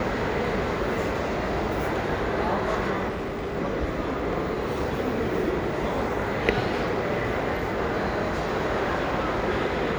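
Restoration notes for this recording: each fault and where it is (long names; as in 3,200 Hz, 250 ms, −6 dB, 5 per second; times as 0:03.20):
0:03.08–0:03.55: clipping −27 dBFS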